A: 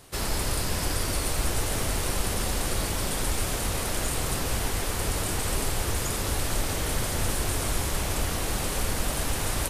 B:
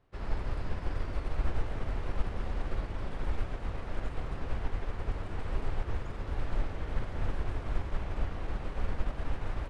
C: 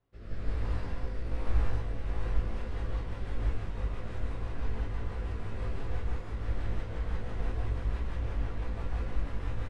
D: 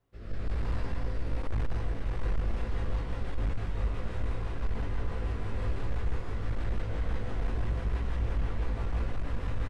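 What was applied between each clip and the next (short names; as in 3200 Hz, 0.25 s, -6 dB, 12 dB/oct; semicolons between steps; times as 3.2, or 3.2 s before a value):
LPF 2000 Hz 12 dB/oct; low shelf 63 Hz +9 dB; upward expander 1.5:1, over -38 dBFS; gain -6 dB
doubler 18 ms -4 dB; rotary speaker horn 1.2 Hz, later 6 Hz, at 1.8; non-linear reverb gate 0.22 s rising, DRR -6.5 dB; gain -7.5 dB
hard clip -27 dBFS, distortion -11 dB; on a send: echo 0.37 s -9.5 dB; on the sum: gain +2.5 dB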